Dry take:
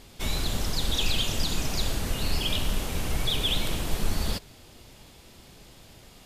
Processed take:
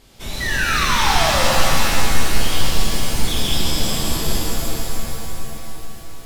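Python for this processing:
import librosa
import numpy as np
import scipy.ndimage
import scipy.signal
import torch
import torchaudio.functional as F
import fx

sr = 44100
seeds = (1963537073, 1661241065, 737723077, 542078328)

y = fx.echo_feedback(x, sr, ms=444, feedback_pct=47, wet_db=-9.0)
y = fx.spec_paint(y, sr, seeds[0], shape='fall', start_s=0.4, length_s=1.04, low_hz=500.0, high_hz=2000.0, level_db=-24.0)
y = fx.rev_shimmer(y, sr, seeds[1], rt60_s=2.6, semitones=7, shimmer_db=-2, drr_db=-4.5)
y = y * librosa.db_to_amplitude(-2.5)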